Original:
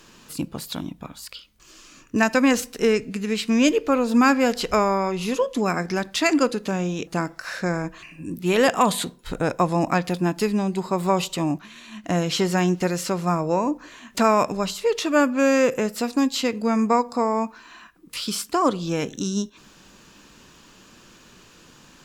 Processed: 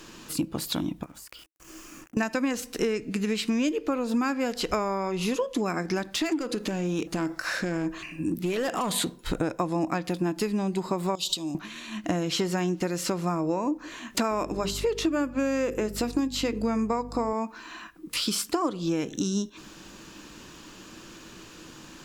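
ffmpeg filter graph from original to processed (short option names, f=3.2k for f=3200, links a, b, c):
-filter_complex "[0:a]asettb=1/sr,asplit=3[a][b][c];[a]atrim=end=1.034[d];[b]atrim=start=1.03:end=2.17,asetpts=PTS-STARTPTS,afade=t=in:d=0.004:c=qsin,afade=t=out:st=1.136:d=0.004:c=qsin,acrusher=bits=7:mix=0:aa=0.5,equalizer=f=3.9k:t=o:w=0.79:g=-11.5,acompressor=threshold=-44dB:ratio=16:attack=3.2:release=140:knee=1:detection=peak[e];[c]atrim=start=2.166[f];[d][e]acrossfade=d=0.004:c1=hsin:c2=qsin[g];[g][f]acrossfade=d=0.004:c1=qsin:c2=hsin,asettb=1/sr,asplit=3[h][i][j];[h]atrim=end=6.064[k];[i]atrim=start=6.06:end=8.96,asetpts=PTS-STARTPTS,afade=t=in:d=0.004:c=qsin,afade=t=out:st=2.896:d=0.004:c=qsin,acompressor=threshold=-26dB:ratio=3:attack=3.2:release=140:knee=1:detection=peak,volume=24dB,asoftclip=hard,volume=-24dB[l];[j]atrim=start=8.956[m];[k][l]acrossfade=d=0.004:c1=hsin:c2=qsin[n];[n][m]acrossfade=d=0.004:c1=qsin:c2=hsin,asettb=1/sr,asplit=3[o][p][q];[o]atrim=end=11.154[r];[p]atrim=start=11.15:end=11.55,asetpts=PTS-STARTPTS,afade=t=in:d=0.004:c=qsin,afade=t=out:st=0.396:d=0.004:c=qsin,acompressor=threshold=-32dB:ratio=16:attack=3.2:release=140:knee=1:detection=peak,highshelf=f=2.7k:t=q:w=3:g=11.5[s];[q]atrim=start=11.546[t];[r][s]acrossfade=d=0.004:c1=hsin:c2=qsin[u];[u][t]acrossfade=d=0.004:c1=qsin:c2=hsin,asettb=1/sr,asplit=3[v][w][x];[v]atrim=end=14.314[y];[w]atrim=start=14.31:end=17.33,asetpts=PTS-STARTPTS,afade=t=in:d=0.004:c=qsin,afade=t=out:st=3.016:d=0.004:c=qsin,equalizer=f=350:w=2.2:g=5.5,bandreject=f=50:t=h:w=6,bandreject=f=100:t=h:w=6,bandreject=f=150:t=h:w=6,bandreject=f=200:t=h:w=6,bandreject=f=250:t=h:w=6,bandreject=f=300:t=h:w=6,bandreject=f=350:t=h:w=6,bandreject=f=400:t=h:w=6,bandreject=f=450:t=h:w=6,aeval=exprs='val(0)+0.0158*(sin(2*PI*50*n/s)+sin(2*PI*2*50*n/s)/2+sin(2*PI*3*50*n/s)/3+sin(2*PI*4*50*n/s)/4+sin(2*PI*5*50*n/s)/5)':c=same[z];[x]atrim=start=17.326[aa];[y][z]acrossfade=d=0.004:c1=hsin:c2=qsin[ab];[ab][aa]acrossfade=d=0.004:c1=qsin:c2=hsin,equalizer=f=320:w=7.8:g=9.5,acompressor=threshold=-27dB:ratio=6,volume=3dB"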